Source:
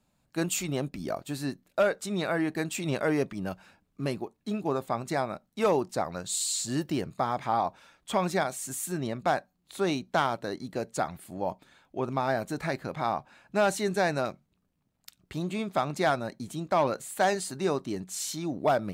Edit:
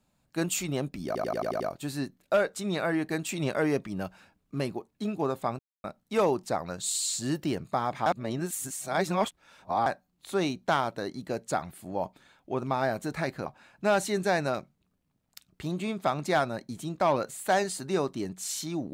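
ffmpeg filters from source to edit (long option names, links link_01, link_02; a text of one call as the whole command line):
ffmpeg -i in.wav -filter_complex "[0:a]asplit=12[link_01][link_02][link_03][link_04][link_05][link_06][link_07][link_08][link_09][link_10][link_11][link_12];[link_01]atrim=end=1.152[link_13];[link_02]atrim=start=1.058:end=1.152[link_14];[link_03]atrim=start=1.058:end=1.152[link_15];[link_04]atrim=start=1.058:end=1.152[link_16];[link_05]atrim=start=1.058:end=1.152[link_17];[link_06]atrim=start=1.058:end=1.152[link_18];[link_07]atrim=start=1.058:end=5.05,asetpts=PTS-STARTPTS,afade=type=out:start_time=3.988:duration=0.004:curve=hsin[link_19];[link_08]atrim=start=5.05:end=5.3,asetpts=PTS-STARTPTS,volume=0[link_20];[link_09]atrim=start=5.3:end=7.522,asetpts=PTS-STARTPTS,afade=type=in:duration=0.004:curve=hsin[link_21];[link_10]atrim=start=7.518:end=9.322,asetpts=PTS-STARTPTS,areverse[link_22];[link_11]atrim=start=9.318:end=12.922[link_23];[link_12]atrim=start=13.168[link_24];[link_13][link_14]acrossfade=duration=0.004:curve1=hsin:curve2=hsin[link_25];[link_25][link_15]acrossfade=duration=0.004:curve1=hsin:curve2=hsin[link_26];[link_26][link_16]acrossfade=duration=0.004:curve1=hsin:curve2=hsin[link_27];[link_27][link_17]acrossfade=duration=0.004:curve1=hsin:curve2=hsin[link_28];[link_28][link_18]acrossfade=duration=0.004:curve1=hsin:curve2=hsin[link_29];[link_19][link_20][link_21]concat=n=3:v=0:a=1[link_30];[link_29][link_30]acrossfade=duration=0.004:curve1=hsin:curve2=hsin[link_31];[link_31][link_22]acrossfade=duration=0.004:curve1=hsin:curve2=hsin[link_32];[link_32][link_23]acrossfade=duration=0.004:curve1=hsin:curve2=hsin[link_33];[link_33][link_24]acrossfade=duration=0.004:curve1=hsin:curve2=hsin" out.wav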